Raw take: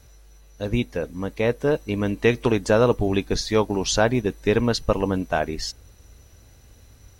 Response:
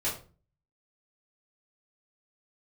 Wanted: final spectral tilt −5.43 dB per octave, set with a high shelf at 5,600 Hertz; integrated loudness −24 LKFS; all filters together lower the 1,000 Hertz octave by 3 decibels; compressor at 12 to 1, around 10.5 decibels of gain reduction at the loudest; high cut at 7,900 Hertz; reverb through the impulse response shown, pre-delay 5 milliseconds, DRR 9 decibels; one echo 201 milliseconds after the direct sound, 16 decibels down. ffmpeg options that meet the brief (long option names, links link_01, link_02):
-filter_complex "[0:a]lowpass=7900,equalizer=frequency=1000:width_type=o:gain=-4,highshelf=frequency=5600:gain=-7,acompressor=threshold=-25dB:ratio=12,aecho=1:1:201:0.158,asplit=2[link_01][link_02];[1:a]atrim=start_sample=2205,adelay=5[link_03];[link_02][link_03]afir=irnorm=-1:irlink=0,volume=-15.5dB[link_04];[link_01][link_04]amix=inputs=2:normalize=0,volume=6.5dB"